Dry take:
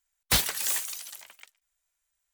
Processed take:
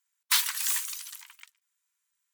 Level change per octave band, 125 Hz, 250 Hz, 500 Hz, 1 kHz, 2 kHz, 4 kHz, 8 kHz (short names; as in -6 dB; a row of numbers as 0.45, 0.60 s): under -40 dB, under -40 dB, under -40 dB, -1.5 dB, 0.0 dB, 0.0 dB, 0.0 dB